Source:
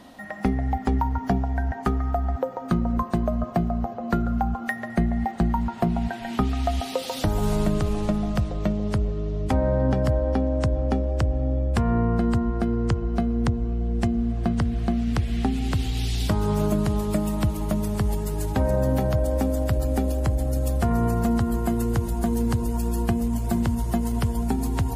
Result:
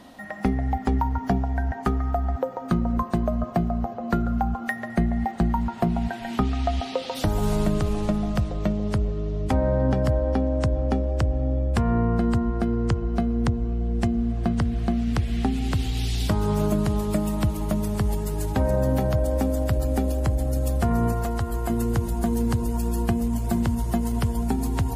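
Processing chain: 6.39–7.14 s: low-pass 8.1 kHz -> 3.9 kHz 12 dB/octave; 21.12–21.70 s: peaking EQ 210 Hz -12.5 dB 0.89 oct

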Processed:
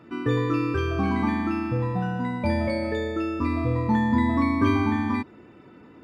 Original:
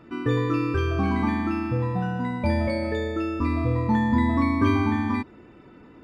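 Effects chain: high-pass 80 Hz

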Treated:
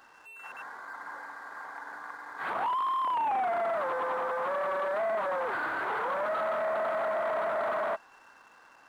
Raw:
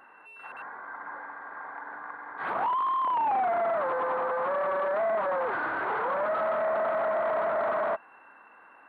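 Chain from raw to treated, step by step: hysteresis with a dead band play -56 dBFS; treble shelf 2.7 kHz +10 dB; trim -3.5 dB

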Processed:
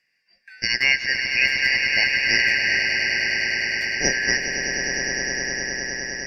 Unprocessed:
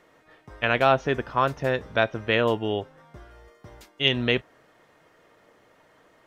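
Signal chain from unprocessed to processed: four frequency bands reordered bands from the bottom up 3142; spectral noise reduction 12 dB; echo with a slow build-up 102 ms, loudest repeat 8, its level -9 dB

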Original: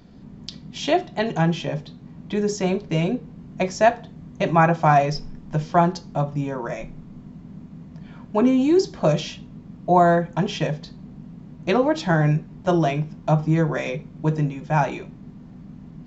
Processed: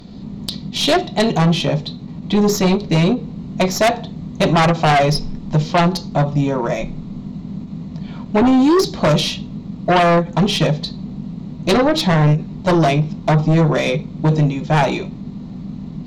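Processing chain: tracing distortion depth 0.078 ms; graphic EQ with 31 bands 200 Hz +4 dB, 1.6 kHz -8 dB, 4 kHz +10 dB; in parallel at -11.5 dB: sine folder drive 14 dB, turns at -3.5 dBFS; on the sum: endings held to a fixed fall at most 210 dB/s

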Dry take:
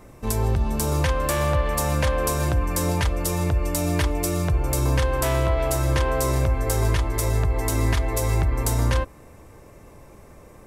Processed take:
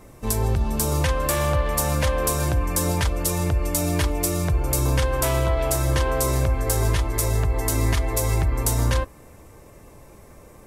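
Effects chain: treble shelf 5.6 kHz +4 dB; Vorbis 48 kbps 48 kHz

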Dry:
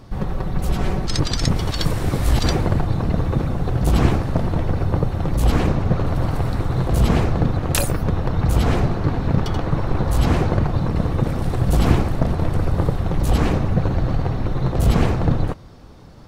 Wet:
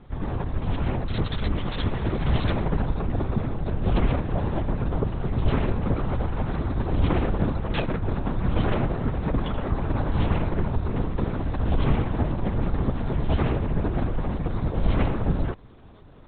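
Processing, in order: LPC vocoder at 8 kHz whisper; trim -5.5 dB

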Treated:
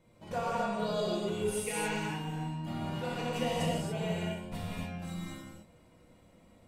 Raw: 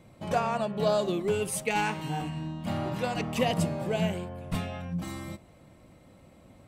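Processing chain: feedback comb 480 Hz, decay 0.18 s, harmonics all, mix 80%; gated-style reverb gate 310 ms flat, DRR -6 dB

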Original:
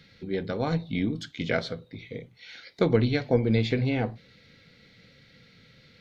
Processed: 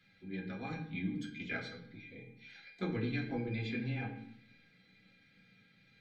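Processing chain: dynamic bell 670 Hz, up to -7 dB, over -41 dBFS, Q 1.6; feedback comb 800 Hz, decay 0.2 s, harmonics all, mix 90%; reverberation RT60 0.70 s, pre-delay 3 ms, DRR -2.5 dB; trim +1.5 dB

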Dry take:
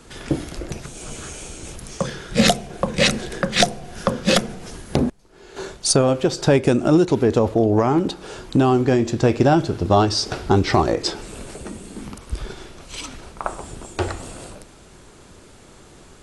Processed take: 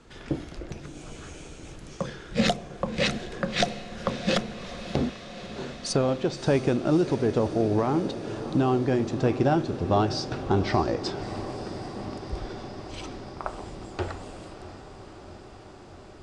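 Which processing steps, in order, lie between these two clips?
distance through air 87 m; on a send: echo that smears into a reverb 626 ms, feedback 77%, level -13 dB; on the sum: trim -7 dB

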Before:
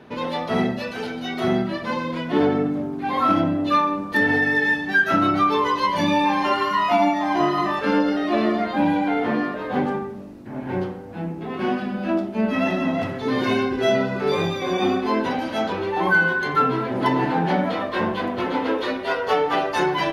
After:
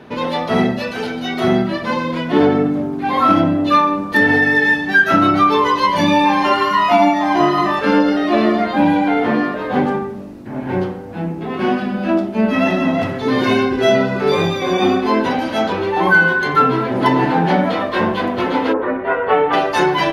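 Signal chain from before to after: 18.72–19.52 s: low-pass 1.5 kHz -> 3 kHz 24 dB/octave; trim +6 dB

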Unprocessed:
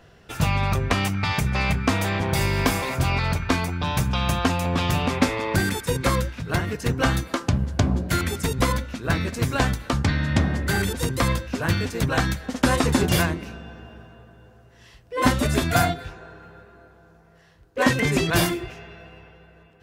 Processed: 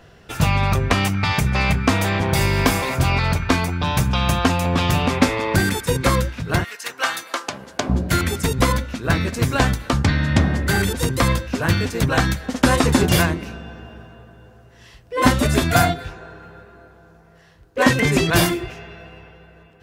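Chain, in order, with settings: 6.63–7.88 s: high-pass 1.4 kHz -> 370 Hz 12 dB/octave; trim +4 dB

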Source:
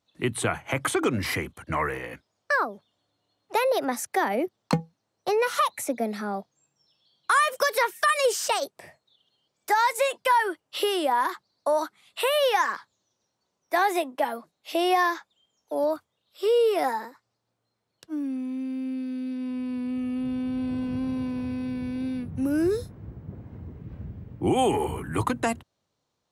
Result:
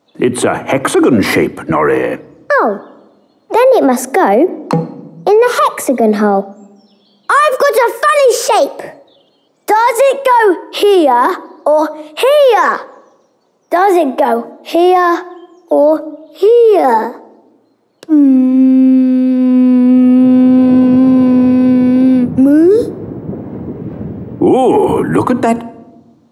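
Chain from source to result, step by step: high-pass 300 Hz 12 dB/octave; tilt shelf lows +9 dB; on a send at -21 dB: reverberation RT60 1.1 s, pre-delay 19 ms; on the sum: loudness maximiser +21 dB; trim -1 dB

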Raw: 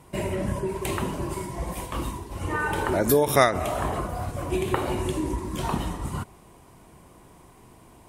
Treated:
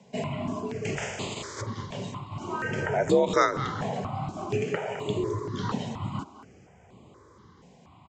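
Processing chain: 0.96–1.60 s: spectral contrast reduction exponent 0.34; speakerphone echo 210 ms, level -11 dB; resampled via 16 kHz; 4.64–5.07 s: high-pass 150 Hz -> 380 Hz 6 dB/octave; frequency shift +51 Hz; stepped phaser 4.2 Hz 330–5600 Hz

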